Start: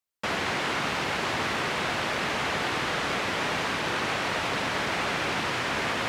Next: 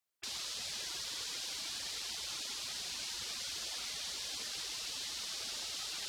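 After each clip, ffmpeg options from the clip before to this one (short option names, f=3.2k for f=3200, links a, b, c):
-af "afftfilt=real='re*lt(hypot(re,im),0.0316)':imag='im*lt(hypot(re,im),0.0316)':win_size=1024:overlap=0.75,lowshelf=f=88:g=-9.5"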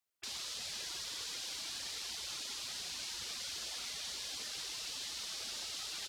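-filter_complex "[0:a]asplit=2[a][b];[b]adelay=32,volume=-13dB[c];[a][c]amix=inputs=2:normalize=0,volume=-1.5dB"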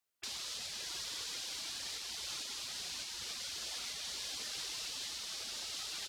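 -af "alimiter=level_in=8.5dB:limit=-24dB:level=0:latency=1:release=410,volume=-8.5dB,volume=1.5dB"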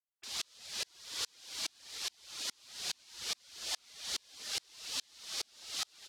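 -af "lowshelf=f=190:g=-4.5,aeval=exprs='val(0)*pow(10,-38*if(lt(mod(-2.4*n/s,1),2*abs(-2.4)/1000),1-mod(-2.4*n/s,1)/(2*abs(-2.4)/1000),(mod(-2.4*n/s,1)-2*abs(-2.4)/1000)/(1-2*abs(-2.4)/1000))/20)':c=same,volume=9.5dB"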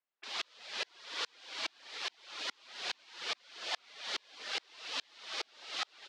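-af "highpass=370,lowpass=2.7k,volume=7.5dB"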